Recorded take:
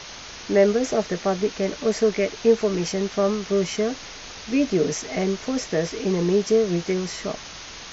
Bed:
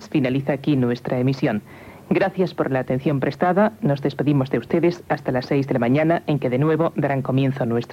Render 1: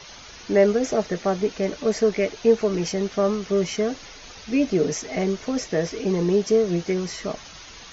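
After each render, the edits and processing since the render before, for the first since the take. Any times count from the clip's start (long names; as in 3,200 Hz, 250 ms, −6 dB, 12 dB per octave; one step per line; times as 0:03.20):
broadband denoise 8 dB, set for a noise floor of −39 dBFS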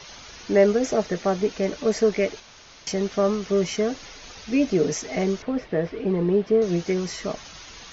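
0:02.40–0:02.87: fill with room tone
0:05.42–0:06.62: high-frequency loss of the air 350 metres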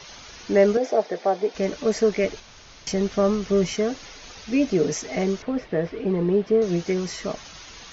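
0:00.77–0:01.55: loudspeaker in its box 350–5,000 Hz, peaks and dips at 490 Hz +3 dB, 730 Hz +6 dB, 1,300 Hz −6 dB, 1,900 Hz −3 dB, 2,800 Hz −7 dB, 4,100 Hz −4 dB
0:02.24–0:03.73: low-shelf EQ 130 Hz +9 dB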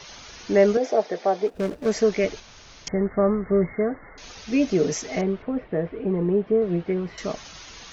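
0:01.47–0:01.91: running median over 41 samples
0:02.88–0:04.18: linear-phase brick-wall low-pass 2,200 Hz
0:05.21–0:07.18: high-frequency loss of the air 480 metres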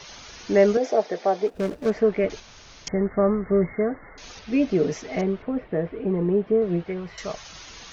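0:01.90–0:02.30: low-pass filter 2,000 Hz
0:04.39–0:05.19: high-frequency loss of the air 160 metres
0:06.84–0:07.50: parametric band 270 Hz −11 dB 0.98 octaves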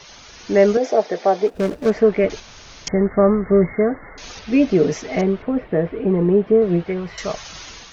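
automatic gain control gain up to 6.5 dB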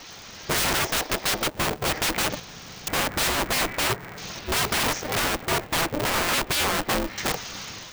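wrap-around overflow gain 18.5 dB
ring modulator with a square carrier 150 Hz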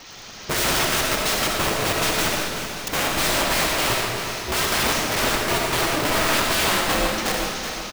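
on a send: repeating echo 375 ms, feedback 49%, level −9.5 dB
on the sum: comb and all-pass reverb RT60 1.4 s, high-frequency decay 0.95×, pre-delay 30 ms, DRR −0.5 dB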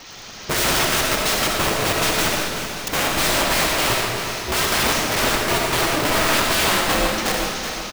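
level +2 dB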